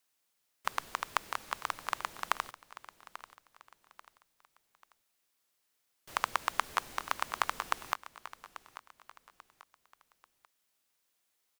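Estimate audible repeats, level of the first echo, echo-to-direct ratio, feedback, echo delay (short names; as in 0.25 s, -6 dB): 3, -15.5 dB, -15.0 dB, 37%, 0.839 s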